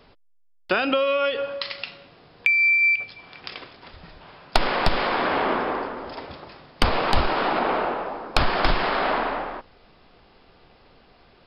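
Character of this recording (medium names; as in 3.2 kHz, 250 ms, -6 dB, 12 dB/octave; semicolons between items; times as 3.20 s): noise floor -56 dBFS; spectral tilt -2.0 dB/octave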